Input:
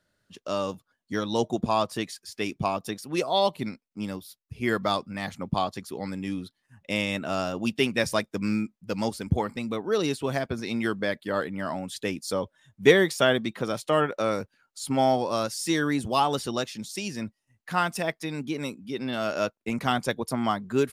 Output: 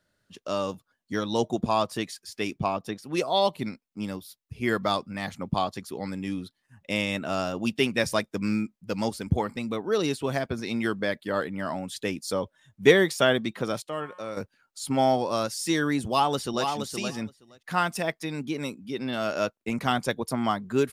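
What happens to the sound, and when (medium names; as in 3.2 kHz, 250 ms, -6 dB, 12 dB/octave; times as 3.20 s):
2.56–3.04 s: treble shelf 6.8 kHz -> 4.7 kHz -10.5 dB
13.82–14.37 s: feedback comb 180 Hz, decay 1.7 s, mix 70%
16.06–16.68 s: echo throw 470 ms, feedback 10%, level -6 dB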